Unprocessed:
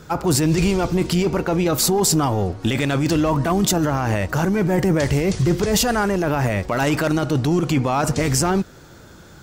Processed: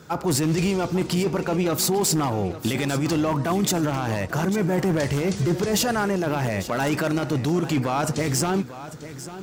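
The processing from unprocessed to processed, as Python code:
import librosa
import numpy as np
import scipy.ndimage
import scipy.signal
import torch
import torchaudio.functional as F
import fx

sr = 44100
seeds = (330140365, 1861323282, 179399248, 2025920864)

p1 = scipy.signal.sosfilt(scipy.signal.butter(2, 100.0, 'highpass', fs=sr, output='sos'), x)
p2 = 10.0 ** (-11.5 / 20.0) * (np.abs((p1 / 10.0 ** (-11.5 / 20.0) + 3.0) % 4.0 - 2.0) - 1.0)
p3 = p2 + fx.echo_feedback(p2, sr, ms=846, feedback_pct=31, wet_db=-14.0, dry=0)
y = F.gain(torch.from_numpy(p3), -3.5).numpy()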